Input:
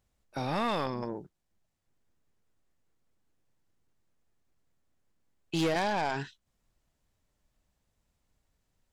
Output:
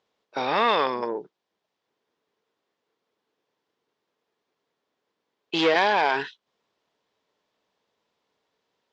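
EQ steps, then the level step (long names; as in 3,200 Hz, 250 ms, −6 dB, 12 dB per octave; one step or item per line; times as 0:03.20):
dynamic equaliser 2,000 Hz, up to +6 dB, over −47 dBFS, Q 1
loudspeaker in its box 320–5,400 Hz, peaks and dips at 440 Hz +8 dB, 1,000 Hz +5 dB, 3,400 Hz +4 dB
+5.5 dB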